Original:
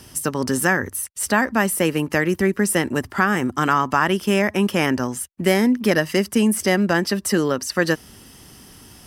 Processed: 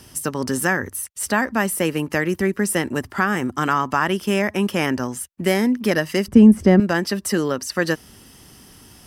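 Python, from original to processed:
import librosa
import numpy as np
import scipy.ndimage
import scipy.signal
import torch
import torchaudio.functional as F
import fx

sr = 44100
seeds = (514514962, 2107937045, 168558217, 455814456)

y = fx.tilt_eq(x, sr, slope=-4.5, at=(6.28, 6.8))
y = F.gain(torch.from_numpy(y), -1.5).numpy()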